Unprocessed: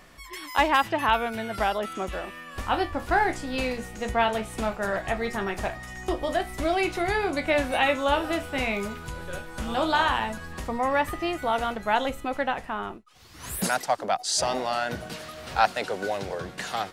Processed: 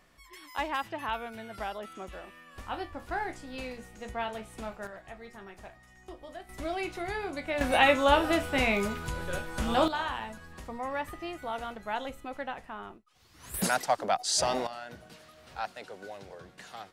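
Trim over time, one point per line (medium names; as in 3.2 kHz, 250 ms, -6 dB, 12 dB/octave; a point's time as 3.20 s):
-11 dB
from 4.87 s -18 dB
from 6.49 s -9 dB
from 7.61 s +1 dB
from 9.88 s -10 dB
from 13.54 s -2 dB
from 14.67 s -14.5 dB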